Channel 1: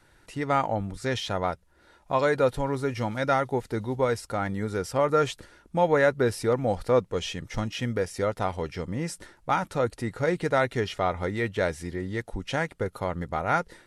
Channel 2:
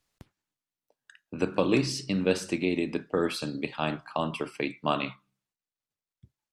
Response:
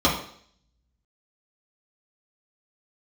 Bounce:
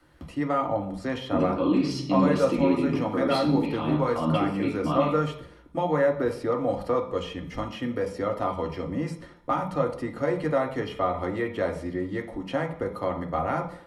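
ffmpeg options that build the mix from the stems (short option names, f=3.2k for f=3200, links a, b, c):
-filter_complex "[0:a]acrossover=split=140|510|2300|7900[a][b][c][d][e];[a]acompressor=threshold=-41dB:ratio=4[f];[b]acompressor=threshold=-32dB:ratio=4[g];[c]acompressor=threshold=-27dB:ratio=4[h];[d]acompressor=threshold=-45dB:ratio=4[i];[e]acompressor=threshold=-56dB:ratio=4[j];[f][g][h][i][j]amix=inputs=5:normalize=0,volume=-3.5dB,asplit=2[k][l];[l]volume=-16.5dB[m];[1:a]alimiter=level_in=1.5dB:limit=-24dB:level=0:latency=1:release=72,volume=-1.5dB,volume=-5.5dB,asplit=2[n][o];[o]volume=-6.5dB[p];[2:a]atrim=start_sample=2205[q];[m][p]amix=inputs=2:normalize=0[r];[r][q]afir=irnorm=-1:irlink=0[s];[k][n][s]amix=inputs=3:normalize=0,equalizer=f=6.8k:t=o:w=1.3:g=-5"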